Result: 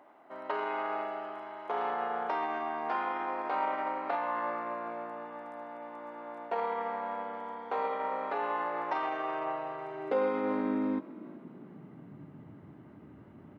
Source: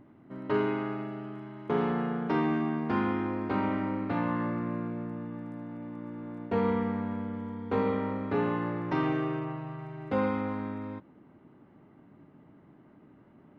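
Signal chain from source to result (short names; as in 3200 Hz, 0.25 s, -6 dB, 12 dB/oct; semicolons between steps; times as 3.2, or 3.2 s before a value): limiter -26.5 dBFS, peak gain reduction 10.5 dB; high-pass sweep 710 Hz -> 77 Hz, 9.32–13; frequency-shifting echo 0.373 s, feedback 41%, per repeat +51 Hz, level -21 dB; gain +3 dB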